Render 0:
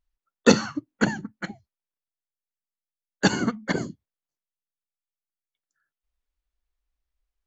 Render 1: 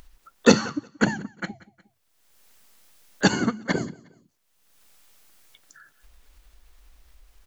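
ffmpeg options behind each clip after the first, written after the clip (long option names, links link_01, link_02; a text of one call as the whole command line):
ffmpeg -i in.wav -af "aecho=1:1:179|358:0.0708|0.0142,acompressor=mode=upward:threshold=-31dB:ratio=2.5,volume=1dB" out.wav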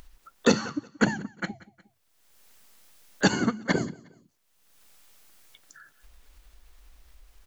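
ffmpeg -i in.wav -af "alimiter=limit=-7.5dB:level=0:latency=1:release=444" out.wav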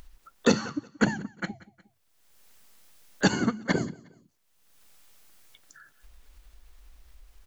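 ffmpeg -i in.wav -af "lowshelf=frequency=170:gain=3,volume=-1.5dB" out.wav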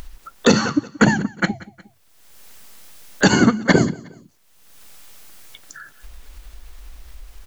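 ffmpeg -i in.wav -af "alimiter=level_in=14.5dB:limit=-1dB:release=50:level=0:latency=1,volume=-1dB" out.wav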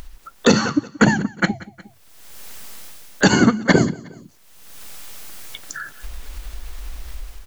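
ffmpeg -i in.wav -af "dynaudnorm=framelen=130:gausssize=5:maxgain=8.5dB,volume=-1dB" out.wav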